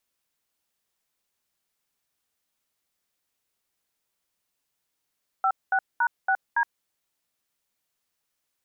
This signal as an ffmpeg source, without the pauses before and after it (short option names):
-f lavfi -i "aevalsrc='0.0794*clip(min(mod(t,0.281),0.068-mod(t,0.281))/0.002,0,1)*(eq(floor(t/0.281),0)*(sin(2*PI*770*mod(t,0.281))+sin(2*PI*1336*mod(t,0.281)))+eq(floor(t/0.281),1)*(sin(2*PI*770*mod(t,0.281))+sin(2*PI*1477*mod(t,0.281)))+eq(floor(t/0.281),2)*(sin(2*PI*941*mod(t,0.281))+sin(2*PI*1477*mod(t,0.281)))+eq(floor(t/0.281),3)*(sin(2*PI*770*mod(t,0.281))+sin(2*PI*1477*mod(t,0.281)))+eq(floor(t/0.281),4)*(sin(2*PI*941*mod(t,0.281))+sin(2*PI*1633*mod(t,0.281))))':d=1.405:s=44100"